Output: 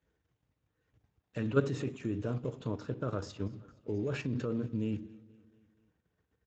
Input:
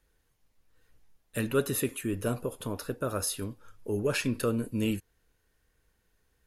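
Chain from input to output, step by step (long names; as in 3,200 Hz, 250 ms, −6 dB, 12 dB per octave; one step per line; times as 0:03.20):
low-shelf EQ 220 Hz +5 dB
rectangular room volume 350 cubic metres, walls furnished, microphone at 0.5 metres
output level in coarse steps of 11 dB
high-shelf EQ 2,700 Hz −6.5 dB, from 0:03.15 −11.5 dB
repeating echo 235 ms, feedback 56%, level −23 dB
Speex 17 kbit/s 16,000 Hz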